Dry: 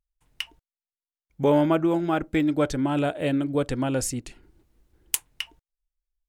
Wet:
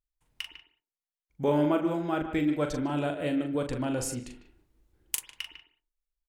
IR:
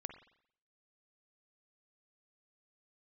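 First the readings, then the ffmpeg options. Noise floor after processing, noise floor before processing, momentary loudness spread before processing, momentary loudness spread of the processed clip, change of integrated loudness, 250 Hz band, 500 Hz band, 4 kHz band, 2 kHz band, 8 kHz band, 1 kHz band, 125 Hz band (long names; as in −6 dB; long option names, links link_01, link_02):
below −85 dBFS, below −85 dBFS, 15 LU, 15 LU, −5.0 dB, −4.5 dB, −5.0 dB, −5.0 dB, −4.5 dB, −5.0 dB, −5.0 dB, −5.5 dB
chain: -filter_complex "[0:a]asplit=2[link_01][link_02];[link_02]adelay=150,highpass=300,lowpass=3400,asoftclip=type=hard:threshold=-10.5dB,volume=-11dB[link_03];[link_01][link_03]amix=inputs=2:normalize=0,asplit=2[link_04][link_05];[1:a]atrim=start_sample=2205,afade=type=out:start_time=0.24:duration=0.01,atrim=end_sample=11025,adelay=40[link_06];[link_05][link_06]afir=irnorm=-1:irlink=0,volume=-2.5dB[link_07];[link_04][link_07]amix=inputs=2:normalize=0,volume=-6dB"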